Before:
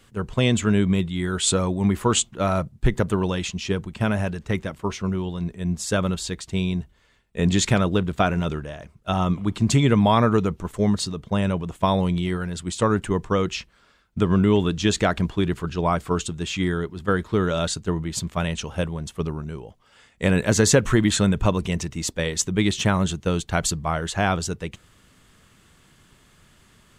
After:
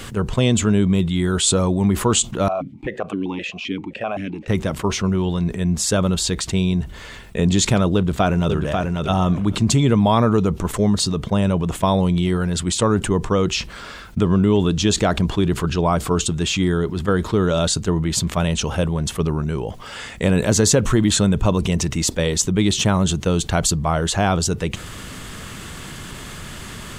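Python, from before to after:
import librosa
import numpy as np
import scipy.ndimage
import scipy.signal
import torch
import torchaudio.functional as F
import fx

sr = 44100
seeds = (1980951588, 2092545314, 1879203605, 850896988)

y = fx.vowel_held(x, sr, hz=7.7, at=(2.48, 4.48))
y = fx.echo_throw(y, sr, start_s=7.95, length_s=1.0, ms=540, feedback_pct=10, wet_db=-8.5)
y = fx.dynamic_eq(y, sr, hz=1900.0, q=1.3, threshold_db=-40.0, ratio=4.0, max_db=-6)
y = fx.env_flatten(y, sr, amount_pct=50)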